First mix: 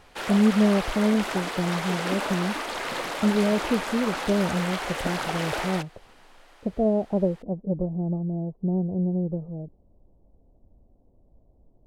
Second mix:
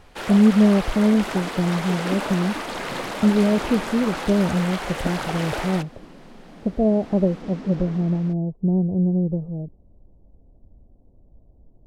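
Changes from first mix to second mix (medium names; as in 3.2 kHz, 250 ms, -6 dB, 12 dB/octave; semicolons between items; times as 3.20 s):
second sound: unmuted; master: add bass shelf 340 Hz +7 dB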